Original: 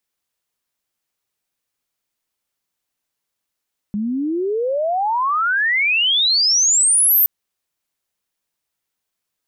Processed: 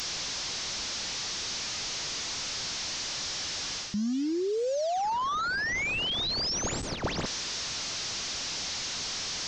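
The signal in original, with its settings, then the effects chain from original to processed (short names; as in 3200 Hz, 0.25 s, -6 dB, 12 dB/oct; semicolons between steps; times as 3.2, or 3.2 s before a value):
chirp logarithmic 200 Hz -> 14000 Hz -19 dBFS -> -10.5 dBFS 3.32 s
delta modulation 32 kbps, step -32.5 dBFS; tone controls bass +3 dB, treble +12 dB; reverse; compressor 6:1, threshold -28 dBFS; reverse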